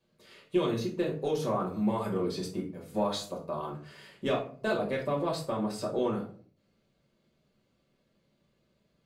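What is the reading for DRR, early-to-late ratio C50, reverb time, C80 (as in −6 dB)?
−2.5 dB, 8.5 dB, 0.45 s, 13.5 dB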